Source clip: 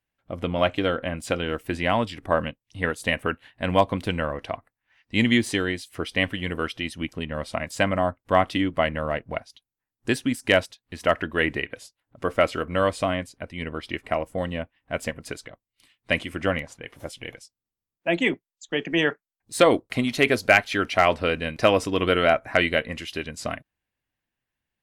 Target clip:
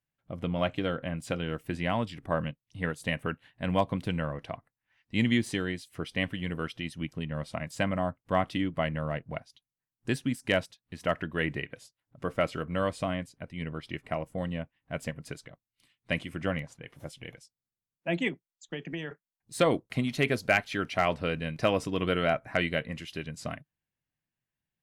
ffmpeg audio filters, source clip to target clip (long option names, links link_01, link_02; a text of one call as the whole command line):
ffmpeg -i in.wav -filter_complex "[0:a]equalizer=frequency=150:width_type=o:width=0.78:gain=10.5,asettb=1/sr,asplit=3[link_01][link_02][link_03];[link_01]atrim=end=18.284[link_04];[link_02]atrim=start=18.28:end=19.11,asetpts=PTS-STARTPTS,afade=type=in:duration=0.004:curve=qsin,afade=type=out:start_time=0.826:duration=0.004:curve=qsin,acompressor=threshold=-25dB:ratio=10[link_05];[link_03]atrim=start=19.106[link_06];[link_04][link_05]acrossfade=duration=0.004:curve1=hsin:curve2=qsin[link_07];[link_07][link_06]acrossfade=duration=0.004:curve1=qsin:curve2=hsin,volume=-8dB" out.wav